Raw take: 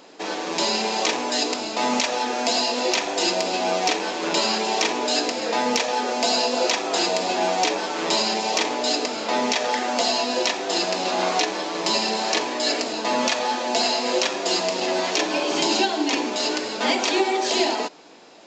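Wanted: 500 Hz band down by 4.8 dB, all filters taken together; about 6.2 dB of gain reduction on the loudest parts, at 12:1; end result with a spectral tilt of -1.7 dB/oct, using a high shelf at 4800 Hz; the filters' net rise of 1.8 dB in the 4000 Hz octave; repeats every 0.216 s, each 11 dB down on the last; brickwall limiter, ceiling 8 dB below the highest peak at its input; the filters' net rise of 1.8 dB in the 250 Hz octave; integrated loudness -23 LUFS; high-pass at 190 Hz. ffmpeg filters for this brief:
-af "highpass=190,equalizer=f=250:t=o:g=6.5,equalizer=f=500:t=o:g=-8.5,equalizer=f=4k:t=o:g=4.5,highshelf=f=4.8k:g=-4.5,acompressor=threshold=-23dB:ratio=12,alimiter=limit=-18dB:level=0:latency=1,aecho=1:1:216|432|648:0.282|0.0789|0.0221,volume=4dB"

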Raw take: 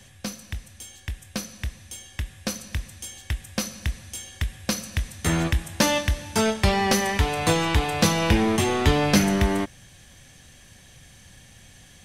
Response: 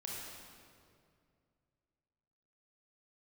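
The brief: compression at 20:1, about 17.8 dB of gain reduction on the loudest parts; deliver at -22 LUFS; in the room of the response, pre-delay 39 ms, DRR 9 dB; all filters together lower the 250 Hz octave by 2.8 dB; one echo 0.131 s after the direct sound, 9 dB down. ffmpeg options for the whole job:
-filter_complex "[0:a]equalizer=f=250:t=o:g=-4,acompressor=threshold=-34dB:ratio=20,aecho=1:1:131:0.355,asplit=2[a][b];[1:a]atrim=start_sample=2205,adelay=39[c];[b][c]afir=irnorm=-1:irlink=0,volume=-8.5dB[d];[a][d]amix=inputs=2:normalize=0,volume=17dB"

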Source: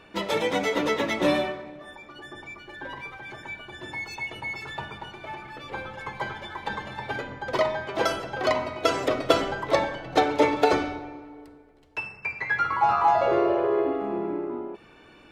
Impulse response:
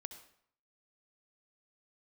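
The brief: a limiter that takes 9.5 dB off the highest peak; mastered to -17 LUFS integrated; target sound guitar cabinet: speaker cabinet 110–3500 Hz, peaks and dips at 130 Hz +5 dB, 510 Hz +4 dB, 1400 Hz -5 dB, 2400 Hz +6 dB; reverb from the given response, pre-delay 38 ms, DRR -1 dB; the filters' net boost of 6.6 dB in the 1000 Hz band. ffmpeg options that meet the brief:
-filter_complex "[0:a]equalizer=f=1k:t=o:g=9,alimiter=limit=-11dB:level=0:latency=1,asplit=2[a][b];[1:a]atrim=start_sample=2205,adelay=38[c];[b][c]afir=irnorm=-1:irlink=0,volume=5dB[d];[a][d]amix=inputs=2:normalize=0,highpass=110,equalizer=f=130:t=q:w=4:g=5,equalizer=f=510:t=q:w=4:g=4,equalizer=f=1.4k:t=q:w=4:g=-5,equalizer=f=2.4k:t=q:w=4:g=6,lowpass=f=3.5k:w=0.5412,lowpass=f=3.5k:w=1.3066,volume=4dB"

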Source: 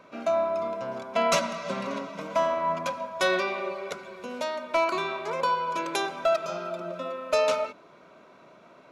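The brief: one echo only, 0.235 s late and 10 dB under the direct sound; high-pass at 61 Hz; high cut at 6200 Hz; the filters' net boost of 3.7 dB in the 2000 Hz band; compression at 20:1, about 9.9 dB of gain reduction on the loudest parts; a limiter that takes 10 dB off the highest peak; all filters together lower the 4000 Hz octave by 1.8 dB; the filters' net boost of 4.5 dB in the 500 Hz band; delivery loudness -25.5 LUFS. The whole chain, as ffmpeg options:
-af "highpass=61,lowpass=6.2k,equalizer=f=500:t=o:g=6,equalizer=f=2k:t=o:g=5.5,equalizer=f=4k:t=o:g=-3.5,acompressor=threshold=-25dB:ratio=20,alimiter=limit=-23dB:level=0:latency=1,aecho=1:1:235:0.316,volume=6dB"

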